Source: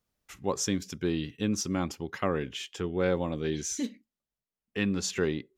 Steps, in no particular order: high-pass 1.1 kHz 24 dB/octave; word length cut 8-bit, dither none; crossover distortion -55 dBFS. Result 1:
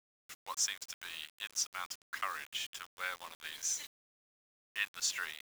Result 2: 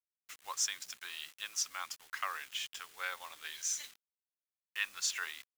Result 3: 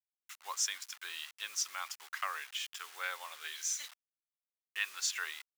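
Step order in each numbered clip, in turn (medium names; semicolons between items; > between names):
high-pass > crossover distortion > word length cut; word length cut > high-pass > crossover distortion; crossover distortion > word length cut > high-pass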